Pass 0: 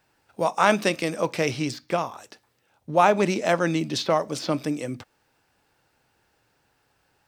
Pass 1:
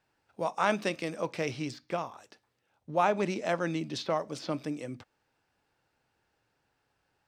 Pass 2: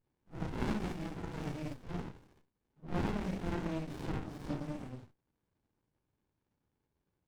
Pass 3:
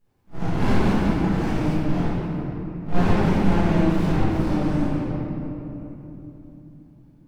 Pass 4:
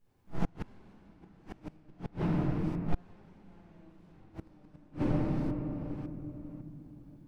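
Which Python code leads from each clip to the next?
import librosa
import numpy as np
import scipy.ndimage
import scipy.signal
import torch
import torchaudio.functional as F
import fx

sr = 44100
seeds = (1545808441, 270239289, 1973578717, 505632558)

y1 = fx.high_shelf(x, sr, hz=9800.0, db=-11.0)
y1 = F.gain(torch.from_numpy(y1), -8.0).numpy()
y2 = fx.phase_scramble(y1, sr, seeds[0], window_ms=200)
y2 = fx.running_max(y2, sr, window=65)
y2 = F.gain(torch.from_numpy(y2), -2.5).numpy()
y3 = fx.room_shoebox(y2, sr, seeds[1], volume_m3=190.0, walls='hard', distance_m=1.3)
y3 = F.gain(torch.from_numpy(y3), 6.0).numpy()
y4 = fx.reverse_delay(y3, sr, ms=551, wet_db=-14.0)
y4 = fx.gate_flip(y4, sr, shuts_db=-13.0, range_db=-34)
y4 = F.gain(torch.from_numpy(y4), -3.0).numpy()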